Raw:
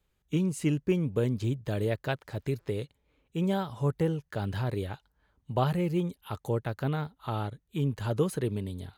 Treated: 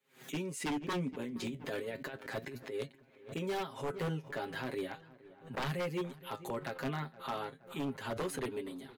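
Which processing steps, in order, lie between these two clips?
HPF 190 Hz 24 dB/oct; bell 2000 Hz +6 dB 0.74 oct; comb 7.5 ms, depth 84%; 1.13–3.39 negative-ratio compressor -34 dBFS, ratio -1; flange 0.35 Hz, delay 7 ms, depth 6 ms, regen +59%; wavefolder -28 dBFS; darkening echo 0.47 s, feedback 53%, low-pass 2200 Hz, level -19.5 dB; backwards sustainer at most 150 dB/s; gain -1.5 dB

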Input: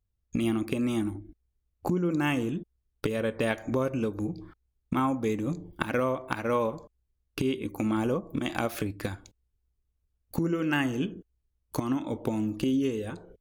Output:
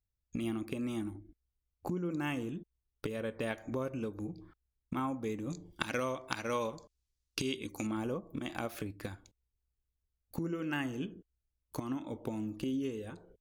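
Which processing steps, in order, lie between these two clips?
5.5–7.87 bell 5500 Hz +15 dB 2 oct; gain -8.5 dB

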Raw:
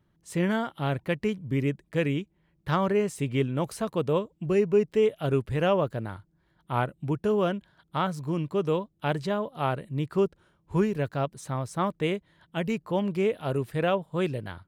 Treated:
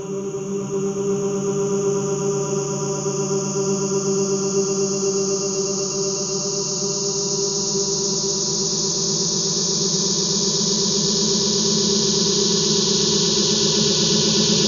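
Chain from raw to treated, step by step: painted sound fall, 10.52–12.39, 210–7000 Hz -26 dBFS; Paulstretch 30×, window 1.00 s, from 10.23; swelling echo 0.123 s, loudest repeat 8, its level -5.5 dB

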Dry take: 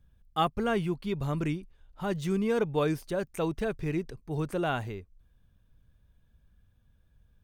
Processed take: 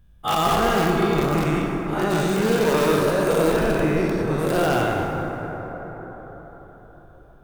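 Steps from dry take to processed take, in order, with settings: spectral dilation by 0.24 s; in parallel at -6 dB: wrapped overs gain 16.5 dB; on the sum: plate-style reverb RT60 4.9 s, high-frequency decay 0.35×, DRR 0 dB; gain -2 dB

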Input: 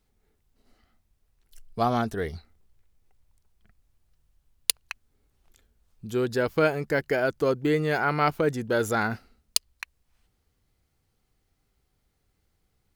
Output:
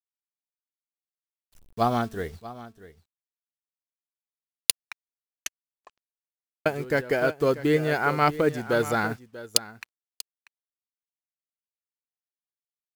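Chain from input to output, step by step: 1.86–2.35 de-hum 223.4 Hz, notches 38; requantised 8-bit, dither none; echo 0.639 s -11 dB; 4.77 tape stop 1.89 s; upward expander 1.5:1, over -53 dBFS; gain +2.5 dB

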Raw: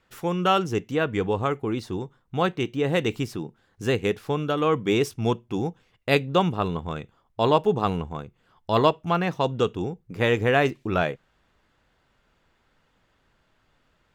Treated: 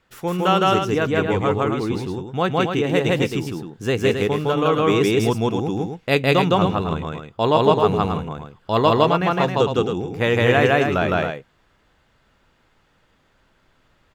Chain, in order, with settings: loudspeakers at several distances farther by 55 m 0 dB, 92 m -6 dB; gain +2 dB

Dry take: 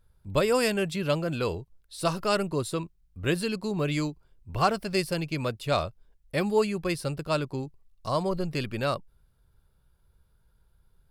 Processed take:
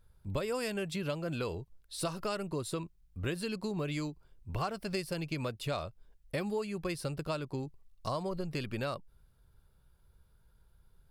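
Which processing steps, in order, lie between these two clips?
compressor 6:1, threshold -32 dBFS, peak gain reduction 13.5 dB

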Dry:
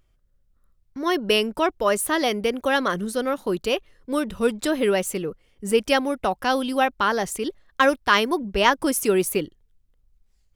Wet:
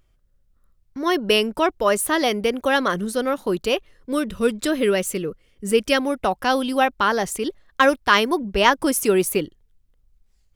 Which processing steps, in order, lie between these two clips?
4.12–6 bell 830 Hz -8.5 dB 0.48 oct; gain +2 dB

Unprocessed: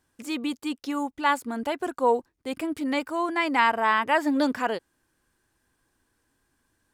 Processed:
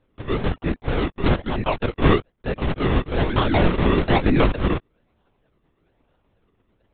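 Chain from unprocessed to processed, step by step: in parallel at +2 dB: limiter -15 dBFS, peak gain reduction 7.5 dB; on the sum: decimation with a swept rate 40×, swing 100% 1.1 Hz; LPC vocoder at 8 kHz whisper

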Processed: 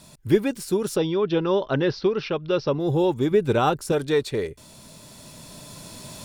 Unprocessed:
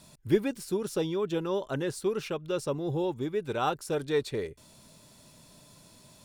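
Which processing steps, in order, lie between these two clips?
recorder AGC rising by 5.2 dB/s; 0.96–2.8 steep low-pass 5500 Hz 72 dB/oct; 3.31–3.92 low shelf 400 Hz +7 dB; gain +5.5 dB

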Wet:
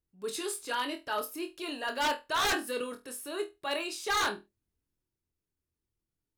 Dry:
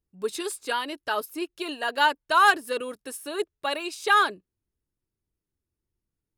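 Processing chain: transient shaper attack -5 dB, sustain +3 dB; flutter echo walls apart 4.2 m, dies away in 0.22 s; wavefolder -18.5 dBFS; gain -4 dB

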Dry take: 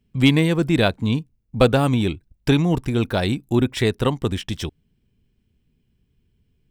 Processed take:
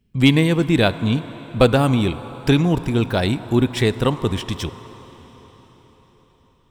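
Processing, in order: on a send: bell 1000 Hz +12.5 dB 0.63 oct + reverb RT60 5.0 s, pre-delay 27 ms, DRR 11 dB; on the sum: gain +1.5 dB

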